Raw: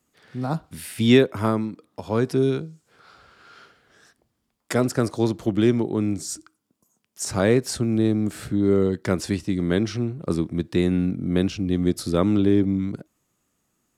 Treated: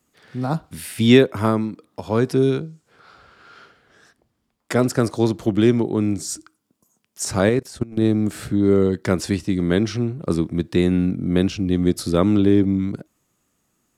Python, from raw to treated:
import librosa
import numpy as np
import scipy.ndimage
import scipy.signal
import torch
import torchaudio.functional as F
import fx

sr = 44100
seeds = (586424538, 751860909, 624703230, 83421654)

y = fx.high_shelf(x, sr, hz=4600.0, db=-5.5, at=(2.59, 4.79))
y = fx.level_steps(y, sr, step_db=21, at=(7.49, 8.02))
y = y * librosa.db_to_amplitude(3.0)